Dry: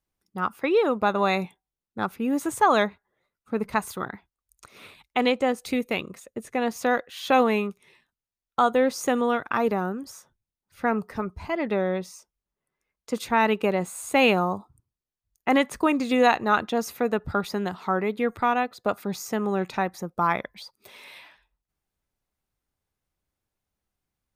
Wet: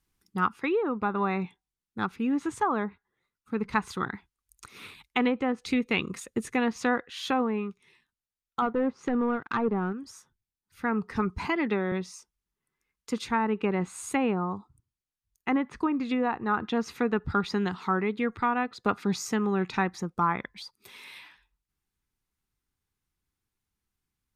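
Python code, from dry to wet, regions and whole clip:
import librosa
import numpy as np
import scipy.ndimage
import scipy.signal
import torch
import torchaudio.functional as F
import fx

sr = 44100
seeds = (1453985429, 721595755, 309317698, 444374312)

y = fx.chain(x, sr, fx.high_shelf(hz=9800.0, db=-7.0),
    fx.leveller(passes=2),
    fx.upward_expand(threshold_db=-28.0, expansion=1.5), at=(8.62, 9.93))
y = fx.chain(y, sr, fx.highpass(hz=170.0, slope=12),
    fx.band_squash(depth_pct=40), at=(11.38, 11.92))
y = fx.env_lowpass_down(y, sr, base_hz=1100.0, full_db=-16.5)
y = fx.peak_eq(y, sr, hz=610.0, db=-14.0, octaves=0.57)
y = fx.rider(y, sr, range_db=10, speed_s=0.5)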